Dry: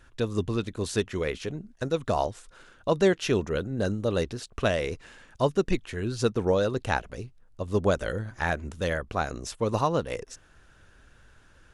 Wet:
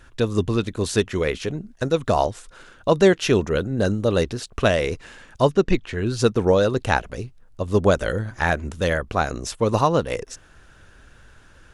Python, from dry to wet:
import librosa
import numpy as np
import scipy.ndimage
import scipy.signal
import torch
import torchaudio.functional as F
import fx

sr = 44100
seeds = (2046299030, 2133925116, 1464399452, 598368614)

y = fx.bessel_lowpass(x, sr, hz=5100.0, order=2, at=(5.51, 6.06))
y = F.gain(torch.from_numpy(y), 6.5).numpy()